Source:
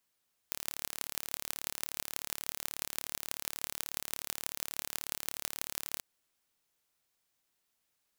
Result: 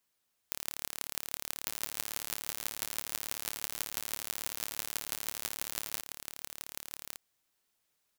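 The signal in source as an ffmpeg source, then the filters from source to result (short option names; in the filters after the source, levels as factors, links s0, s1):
-f lavfi -i "aevalsrc='0.531*eq(mod(n,1208),0)*(0.5+0.5*eq(mod(n,7248),0))':d=5.48:s=44100"
-af "aecho=1:1:1160:0.562"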